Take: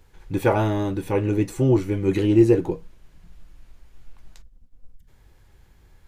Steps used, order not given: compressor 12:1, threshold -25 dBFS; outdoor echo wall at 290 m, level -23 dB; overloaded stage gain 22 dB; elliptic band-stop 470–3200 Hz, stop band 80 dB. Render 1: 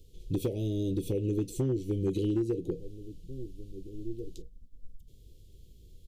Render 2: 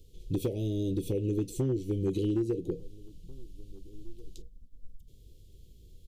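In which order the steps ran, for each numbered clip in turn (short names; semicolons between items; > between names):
outdoor echo > compressor > elliptic band-stop > overloaded stage; compressor > elliptic band-stop > overloaded stage > outdoor echo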